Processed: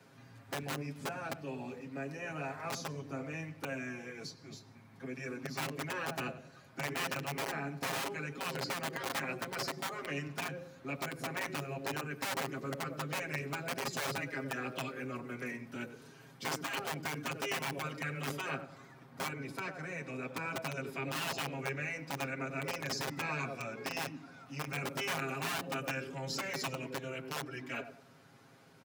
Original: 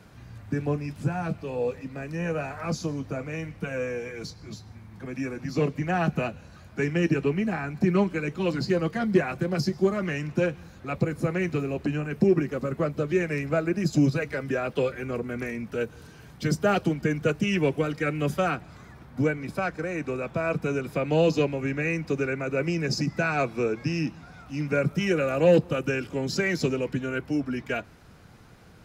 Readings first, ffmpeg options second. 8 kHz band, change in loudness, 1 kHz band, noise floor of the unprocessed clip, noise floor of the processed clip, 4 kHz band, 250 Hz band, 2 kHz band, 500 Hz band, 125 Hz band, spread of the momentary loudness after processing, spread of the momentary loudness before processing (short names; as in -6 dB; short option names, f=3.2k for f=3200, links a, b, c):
-0.5 dB, -11.5 dB, -6.0 dB, -49 dBFS, -58 dBFS, -2.0 dB, -16.0 dB, -6.0 dB, -15.5 dB, -14.5 dB, 8 LU, 10 LU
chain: -filter_complex "[0:a]asplit=2[a][b];[b]adelay=95,lowpass=f=1.5k:p=1,volume=-13dB,asplit=2[c][d];[d]adelay=95,lowpass=f=1.5k:p=1,volume=0.38,asplit=2[e][f];[f]adelay=95,lowpass=f=1.5k:p=1,volume=0.38,asplit=2[g][h];[h]adelay=95,lowpass=f=1.5k:p=1,volume=0.38[i];[a][c][e][g][i]amix=inputs=5:normalize=0,acrossover=split=350|1100|2900[j][k][l][m];[j]aeval=exprs='(mod(15*val(0)+1,2)-1)/15':c=same[n];[n][k][l][m]amix=inputs=4:normalize=0,highpass=180,afftfilt=real='re*lt(hypot(re,im),0.178)':imag='im*lt(hypot(re,im),0.178)':win_size=1024:overlap=0.75,aecho=1:1:7.4:0.73,volume=-7.5dB"